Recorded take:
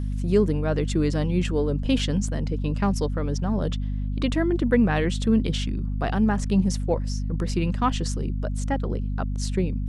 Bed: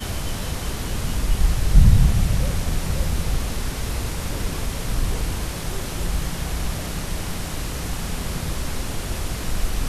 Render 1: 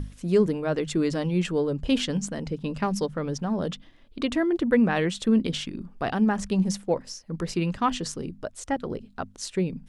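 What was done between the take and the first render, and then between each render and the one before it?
mains-hum notches 50/100/150/200/250 Hz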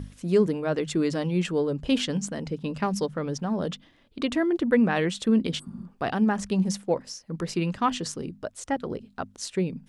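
high-pass filter 81 Hz 6 dB per octave
0:05.61–0:05.81: healed spectral selection 240–7,900 Hz after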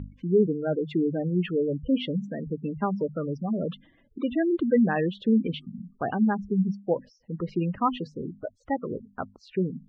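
gate on every frequency bin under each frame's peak −15 dB strong
low-pass filter 3,000 Hz 24 dB per octave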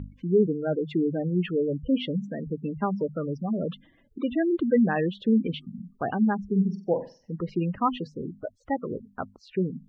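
0:06.48–0:07.31: flutter between parallel walls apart 7.9 metres, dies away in 0.34 s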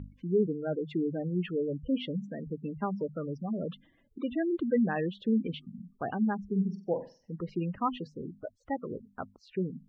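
level −5.5 dB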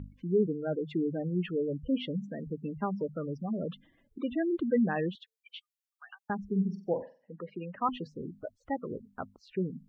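0:05.15–0:06.30: Bessel high-pass filter 2,100 Hz, order 8
0:07.02–0:07.89: loudspeaker in its box 270–2,800 Hz, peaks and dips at 340 Hz −7 dB, 580 Hz +5 dB, 1,700 Hz +6 dB

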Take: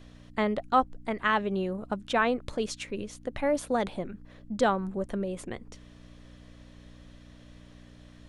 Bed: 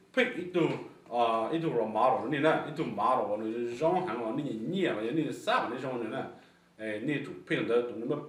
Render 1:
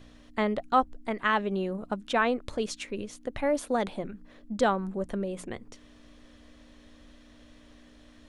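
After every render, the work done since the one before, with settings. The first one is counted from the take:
hum removal 60 Hz, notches 3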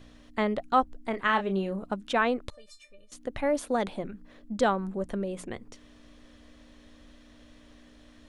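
0:01.10–0:01.83: double-tracking delay 31 ms −8.5 dB
0:02.50–0:03.12: tuned comb filter 600 Hz, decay 0.16 s, mix 100%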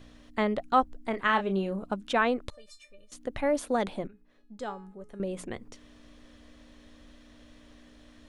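0:01.42–0:02.02: notch filter 1,900 Hz, Q 9.2
0:04.07–0:05.20: tuned comb filter 420 Hz, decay 0.46 s, mix 80%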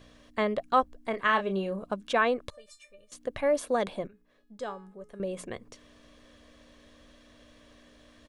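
low-shelf EQ 72 Hz −10.5 dB
comb filter 1.8 ms, depth 33%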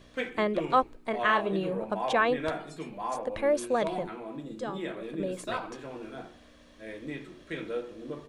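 mix in bed −6.5 dB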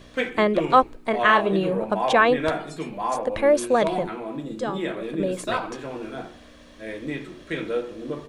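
level +7.5 dB

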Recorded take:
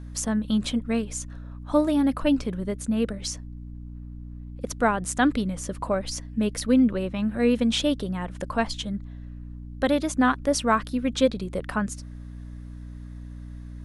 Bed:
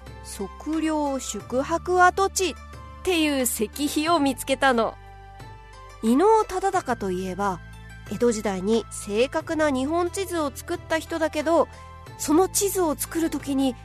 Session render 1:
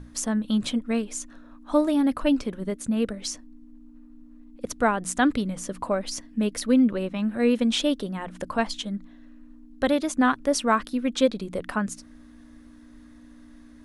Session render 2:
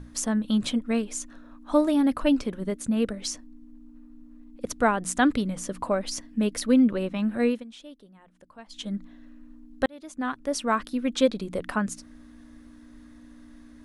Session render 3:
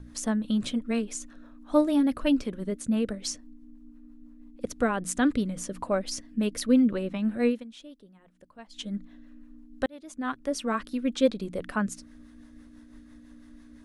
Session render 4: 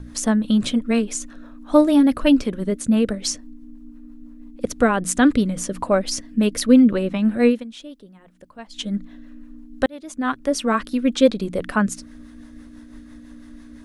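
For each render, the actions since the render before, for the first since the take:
mains-hum notches 60/120/180 Hz
0:07.41–0:08.91: duck −21.5 dB, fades 0.23 s; 0:09.86–0:11.58: fade in equal-power
rotating-speaker cabinet horn 6 Hz
level +8.5 dB; brickwall limiter −3 dBFS, peak gain reduction 1.5 dB

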